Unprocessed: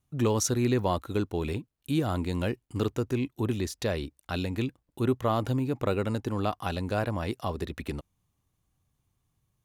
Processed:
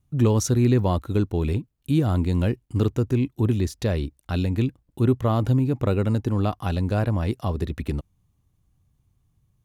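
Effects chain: bass shelf 270 Hz +11.5 dB

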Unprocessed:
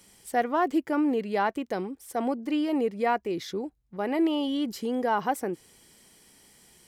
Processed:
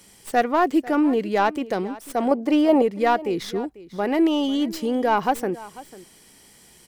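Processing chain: tracing distortion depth 0.063 ms; 2.31–2.82 s: peaking EQ 670 Hz +11 dB 1.3 oct; delay 495 ms -18.5 dB; trim +5.5 dB

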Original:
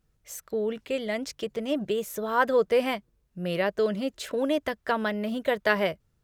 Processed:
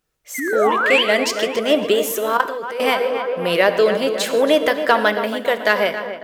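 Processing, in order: 0.34–0.75 s: painted sound fall 960–2200 Hz -37 dBFS; tone controls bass -14 dB, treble -6 dB; 0.38–1.03 s: painted sound rise 250–3300 Hz -33 dBFS; in parallel at -9 dB: saturation -21.5 dBFS, distortion -12 dB; on the sum: treble shelf 3.8 kHz +9.5 dB; on a send: tape echo 276 ms, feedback 72%, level -8.5 dB, low-pass 2.2 kHz; 2.37–2.80 s: on the sum: level held to a coarse grid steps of 17 dB; gated-style reverb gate 180 ms flat, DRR 11 dB; level rider gain up to 11.5 dB

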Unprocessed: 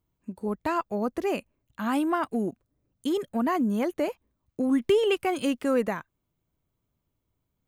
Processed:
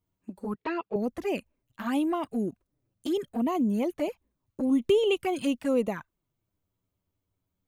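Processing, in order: 0.54–0.96 s: cabinet simulation 190–4200 Hz, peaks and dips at 420 Hz +9 dB, 610 Hz -5 dB, 2.7 kHz +4 dB; touch-sensitive flanger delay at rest 10.7 ms, full sweep at -22 dBFS

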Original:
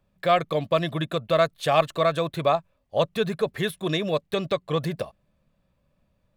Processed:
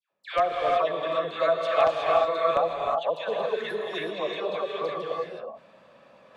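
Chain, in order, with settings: high-pass 530 Hz 12 dB/octave; phase dispersion lows, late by 113 ms, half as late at 1.4 kHz; in parallel at -3.5 dB: integer overflow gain 10.5 dB; on the sum: tape spacing loss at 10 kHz 21 dB; gated-style reverb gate 390 ms rising, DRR 0 dB; reverse; upward compressor, threshold -29 dBFS; reverse; trim -5 dB

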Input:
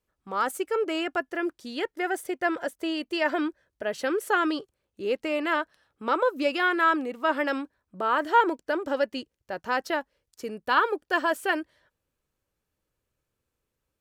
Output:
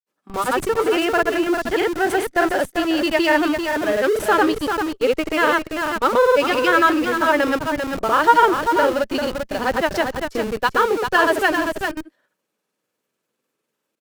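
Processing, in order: granulator, pitch spread up and down by 0 st; high-pass 190 Hz 24 dB/octave; delay 394 ms -7.5 dB; in parallel at -8.5 dB: Schmitt trigger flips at -38.5 dBFS; on the sum: trim +7.5 dB

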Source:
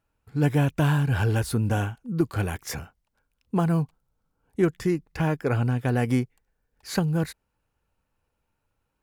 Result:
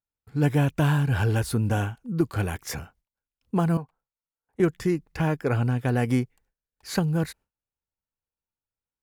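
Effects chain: gate with hold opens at -58 dBFS; 3.77–4.60 s: three-band isolator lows -13 dB, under 460 Hz, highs -14 dB, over 2 kHz

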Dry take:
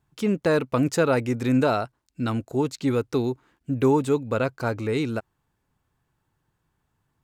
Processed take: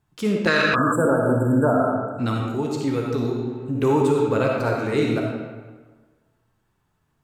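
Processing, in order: reverberation RT60 1.4 s, pre-delay 15 ms, DRR -0.5 dB; flange 0.45 Hz, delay 9 ms, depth 8.7 ms, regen -51%; 0.47–0.96 s: high-order bell 2.8 kHz +15.5 dB 2.8 oct; peak limiter -14.5 dBFS, peak gain reduction 9 dB; 0.75–2.19 s: spectral selection erased 1.7–7.3 kHz; 2.48–3.75 s: compression 1.5:1, threshold -32 dBFS, peak gain reduction 4.5 dB; trim +5 dB

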